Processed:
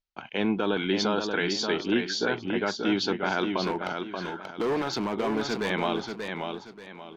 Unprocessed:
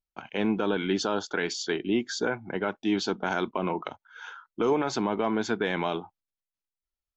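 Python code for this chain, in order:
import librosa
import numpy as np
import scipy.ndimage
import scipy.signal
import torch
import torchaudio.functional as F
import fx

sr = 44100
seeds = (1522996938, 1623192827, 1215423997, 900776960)

y = scipy.signal.sosfilt(scipy.signal.butter(4, 5100.0, 'lowpass', fs=sr, output='sos'), x)
y = fx.high_shelf(y, sr, hz=3800.0, db=8.5)
y = fx.clip_hard(y, sr, threshold_db=-23.5, at=(3.62, 5.7))
y = fx.echo_warbled(y, sr, ms=583, feedback_pct=31, rate_hz=2.8, cents=76, wet_db=-5.5)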